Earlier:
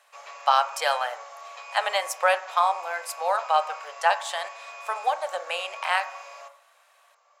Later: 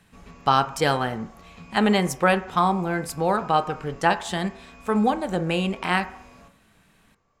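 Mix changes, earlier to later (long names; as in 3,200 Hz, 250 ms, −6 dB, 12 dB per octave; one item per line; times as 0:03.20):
background −10.0 dB
master: remove Chebyshev high-pass filter 560 Hz, order 5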